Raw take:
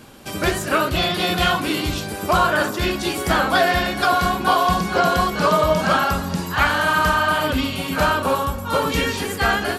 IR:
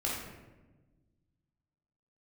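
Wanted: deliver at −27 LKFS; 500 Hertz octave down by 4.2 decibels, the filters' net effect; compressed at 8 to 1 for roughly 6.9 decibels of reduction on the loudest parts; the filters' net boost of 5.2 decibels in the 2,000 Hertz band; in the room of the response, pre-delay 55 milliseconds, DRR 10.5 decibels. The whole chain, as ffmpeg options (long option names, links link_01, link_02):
-filter_complex "[0:a]equalizer=frequency=500:width_type=o:gain=-6.5,equalizer=frequency=2000:width_type=o:gain=8,acompressor=threshold=-18dB:ratio=8,asplit=2[link_01][link_02];[1:a]atrim=start_sample=2205,adelay=55[link_03];[link_02][link_03]afir=irnorm=-1:irlink=0,volume=-16dB[link_04];[link_01][link_04]amix=inputs=2:normalize=0,volume=-5.5dB"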